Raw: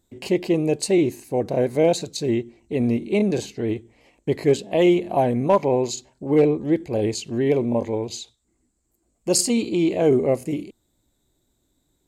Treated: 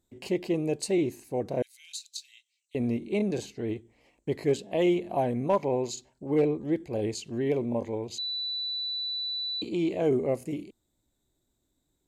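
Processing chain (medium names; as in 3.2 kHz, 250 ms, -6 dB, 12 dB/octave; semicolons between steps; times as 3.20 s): 1.62–2.75 s: inverse Chebyshev high-pass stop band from 680 Hz, stop band 70 dB; 8.18–9.62 s: bleep 3.97 kHz -22 dBFS; trim -7.5 dB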